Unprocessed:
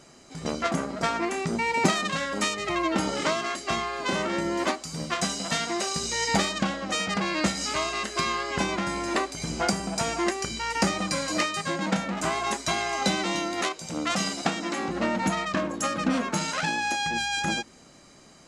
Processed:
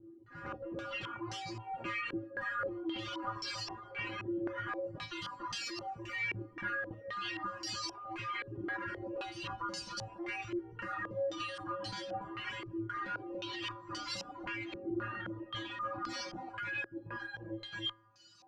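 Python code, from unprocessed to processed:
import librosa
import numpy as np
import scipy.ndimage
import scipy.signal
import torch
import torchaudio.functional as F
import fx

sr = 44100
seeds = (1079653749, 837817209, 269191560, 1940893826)

p1 = fx.lower_of_two(x, sr, delay_ms=0.69)
p2 = fx.comb_fb(p1, sr, f0_hz=110.0, decay_s=0.47, harmonics='odd', damping=0.0, mix_pct=100)
p3 = p2 + fx.echo_single(p2, sr, ms=284, db=-4.5, dry=0)
p4 = fx.dereverb_blind(p3, sr, rt60_s=1.5)
p5 = fx.over_compress(p4, sr, threshold_db=-52.0, ratio=-1.0)
p6 = p4 + (p5 * 10.0 ** (3.0 / 20.0))
p7 = fx.filter_held_lowpass(p6, sr, hz=3.8, low_hz=360.0, high_hz=4900.0)
y = p7 * 10.0 ** (-1.5 / 20.0)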